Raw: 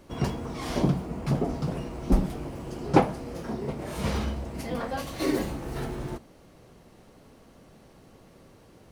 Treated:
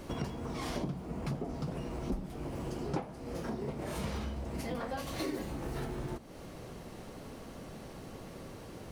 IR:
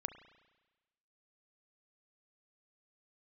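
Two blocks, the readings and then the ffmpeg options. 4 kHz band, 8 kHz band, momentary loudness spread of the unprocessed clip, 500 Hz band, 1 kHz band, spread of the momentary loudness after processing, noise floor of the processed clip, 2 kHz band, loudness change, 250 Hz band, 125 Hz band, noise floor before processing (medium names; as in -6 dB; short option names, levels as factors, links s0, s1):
-6.0 dB, -5.5 dB, 12 LU, -8.5 dB, -9.5 dB, 10 LU, -48 dBFS, -7.0 dB, -10.0 dB, -9.0 dB, -8.5 dB, -55 dBFS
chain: -af "acompressor=threshold=0.00708:ratio=5,volume=2.24"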